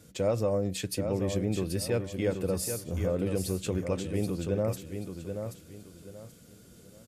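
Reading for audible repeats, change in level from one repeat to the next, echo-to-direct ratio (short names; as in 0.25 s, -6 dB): 3, -11.0 dB, -6.5 dB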